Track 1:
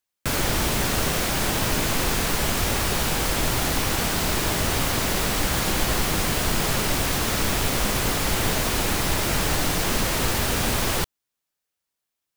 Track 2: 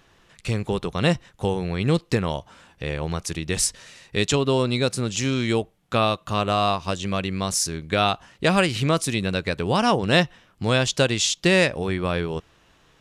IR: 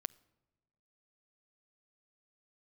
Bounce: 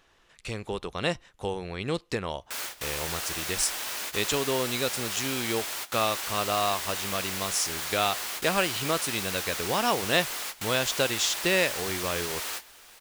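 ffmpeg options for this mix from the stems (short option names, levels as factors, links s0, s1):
-filter_complex "[0:a]highpass=f=1300:p=1,adelay=2250,volume=0.422,asplit=2[s0][s1];[s1]volume=0.133[s2];[1:a]volume=0.596,asplit=2[s3][s4];[s4]apad=whole_len=644480[s5];[s0][s5]sidechaingate=range=0.0355:threshold=0.00178:ratio=16:detection=peak[s6];[2:a]atrim=start_sample=2205[s7];[s2][s7]afir=irnorm=-1:irlink=0[s8];[s6][s3][s8]amix=inputs=3:normalize=0,equalizer=f=140:t=o:w=1.9:g=-9.5"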